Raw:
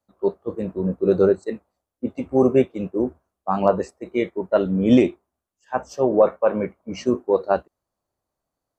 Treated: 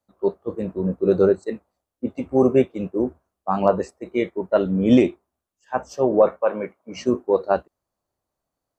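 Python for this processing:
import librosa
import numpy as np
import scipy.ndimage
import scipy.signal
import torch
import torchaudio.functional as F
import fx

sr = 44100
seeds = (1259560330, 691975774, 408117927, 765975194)

y = fx.highpass(x, sr, hz=410.0, slope=6, at=(6.42, 6.96))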